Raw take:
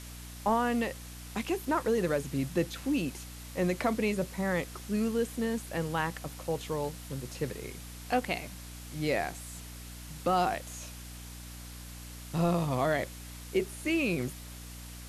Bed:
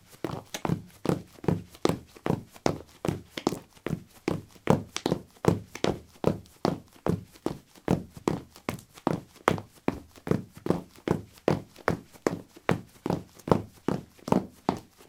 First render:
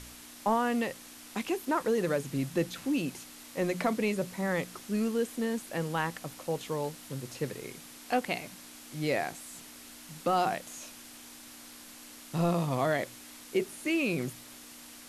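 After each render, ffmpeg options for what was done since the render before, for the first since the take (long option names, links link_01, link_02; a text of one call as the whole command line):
ffmpeg -i in.wav -af "bandreject=frequency=60:width_type=h:width=4,bandreject=frequency=120:width_type=h:width=4,bandreject=frequency=180:width_type=h:width=4" out.wav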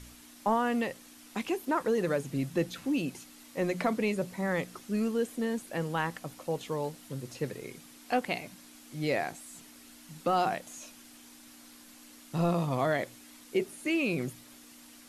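ffmpeg -i in.wav -af "afftdn=noise_reduction=6:noise_floor=-50" out.wav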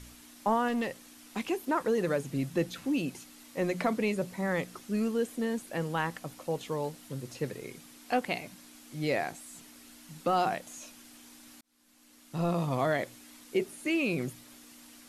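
ffmpeg -i in.wav -filter_complex "[0:a]asettb=1/sr,asplit=3[link_01][link_02][link_03];[link_01]atrim=end=0.684[link_04];[link_02]atrim=start=0.68:end=1.39,asetpts=PTS-STARTPTS,afade=type=in:duration=0.004:curve=qsin,afade=type=out:start_time=0.706:duration=0.004:curve=qsin,asoftclip=type=hard:threshold=-27dB[link_05];[link_03]atrim=start=1.386[link_06];[link_04][link_05]acrossfade=duration=0.004:curve1=hsin:curve2=qsin[link_07];[link_07][link_06]acrossfade=duration=0.004:curve1=qsin:curve2=hsin,asplit=2[link_08][link_09];[link_08]atrim=end=11.61,asetpts=PTS-STARTPTS,afade=type=out:start_time=11.606:duration=0.004:curve=hsin[link_10];[link_09]atrim=start=11.61,asetpts=PTS-STARTPTS,afade=type=in:duration=1.07[link_11];[link_10][link_11]concat=n=2:v=0:a=1" out.wav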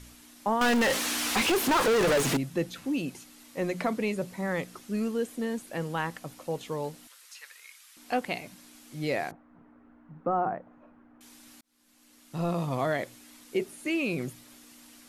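ffmpeg -i in.wav -filter_complex "[0:a]asettb=1/sr,asplit=3[link_01][link_02][link_03];[link_01]atrim=end=0.614[link_04];[link_02]atrim=start=0.61:end=2.37,asetpts=PTS-STARTPTS,afade=type=in:duration=0.004:curve=qsin,afade=type=out:start_time=1.756:duration=0.004:curve=qsin,asplit=2[link_05][link_06];[link_06]highpass=frequency=720:poles=1,volume=38dB,asoftclip=type=tanh:threshold=-17.5dB[link_07];[link_05][link_07]amix=inputs=2:normalize=0,lowpass=frequency=5100:poles=1,volume=-6dB[link_08];[link_03]atrim=start=2.366[link_09];[link_04][link_08]acrossfade=duration=0.004:curve1=hsin:curve2=qsin[link_10];[link_10][link_09]acrossfade=duration=0.004:curve1=qsin:curve2=hsin,asettb=1/sr,asplit=3[link_11][link_12][link_13];[link_11]atrim=end=7.074[link_14];[link_12]atrim=start=7.07:end=7.97,asetpts=PTS-STARTPTS,afade=type=in:duration=0.004:curve=qsin,afade=type=out:start_time=0.896:duration=0.004:curve=qsin,highpass=frequency=1200:width=0.5412,highpass=frequency=1200:width=1.3066[link_15];[link_13]atrim=start=7.966[link_16];[link_14][link_15]acrossfade=duration=0.004:curve1=hsin:curve2=qsin[link_17];[link_17][link_16]acrossfade=duration=0.004:curve1=qsin:curve2=hsin,asettb=1/sr,asplit=3[link_18][link_19][link_20];[link_18]atrim=end=9.314[link_21];[link_19]atrim=start=9.31:end=11.21,asetpts=PTS-STARTPTS,afade=type=in:duration=0.004:curve=qsin,afade=type=out:start_time=1.896:duration=0.004:curve=qsin,lowpass=frequency=1400:width=0.5412,lowpass=frequency=1400:width=1.3066[link_22];[link_20]atrim=start=11.206[link_23];[link_21][link_22]acrossfade=duration=0.004:curve1=hsin:curve2=qsin[link_24];[link_24][link_23]acrossfade=duration=0.004:curve1=qsin:curve2=hsin" out.wav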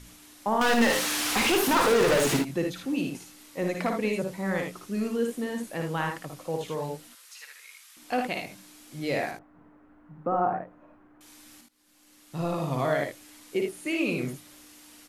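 ffmpeg -i in.wav -af "aecho=1:1:56|77:0.562|0.473" out.wav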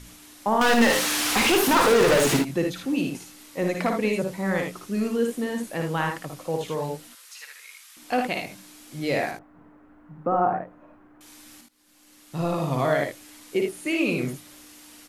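ffmpeg -i in.wav -af "volume=3.5dB" out.wav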